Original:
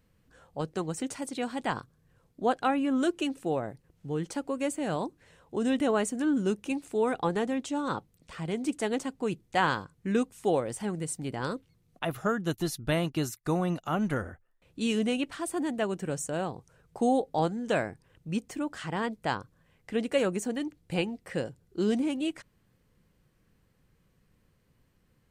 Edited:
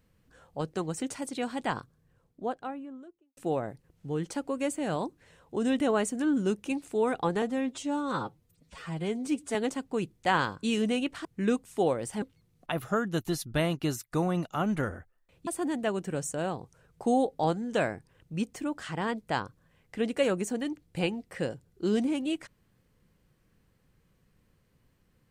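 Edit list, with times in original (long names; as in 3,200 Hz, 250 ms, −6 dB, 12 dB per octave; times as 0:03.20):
0:01.62–0:03.37: fade out and dull
0:07.42–0:08.84: time-stretch 1.5×
0:10.89–0:11.55: remove
0:14.80–0:15.42: move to 0:09.92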